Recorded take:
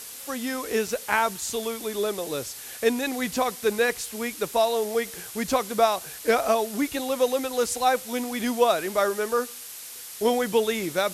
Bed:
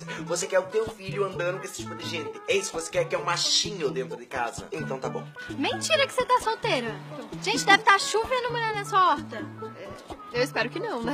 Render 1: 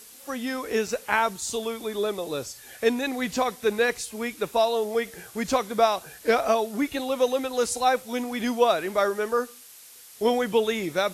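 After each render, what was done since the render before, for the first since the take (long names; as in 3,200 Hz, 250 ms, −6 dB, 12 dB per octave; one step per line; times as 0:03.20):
noise reduction from a noise print 8 dB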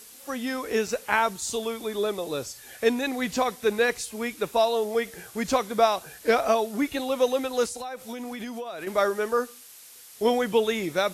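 0:07.65–0:08.87: downward compressor 16 to 1, threshold −31 dBFS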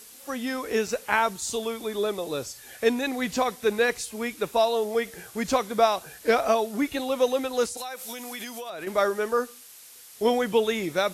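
0:07.77–0:08.70: spectral tilt +3 dB per octave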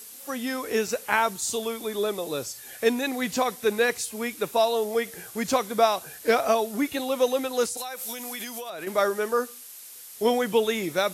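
high-pass filter 80 Hz 12 dB per octave
high-shelf EQ 9,400 Hz +8 dB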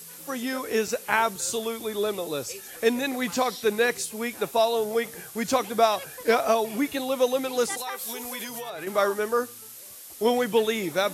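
mix in bed −18.5 dB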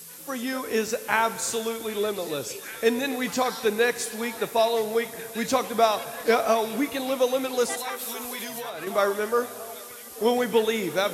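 echo through a band-pass that steps 776 ms, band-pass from 3,600 Hz, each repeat −0.7 octaves, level −10 dB
dense smooth reverb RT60 2.5 s, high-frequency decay 0.95×, DRR 13 dB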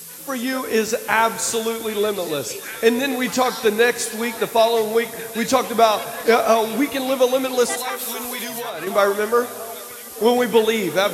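level +6 dB
brickwall limiter −3 dBFS, peak gain reduction 2.5 dB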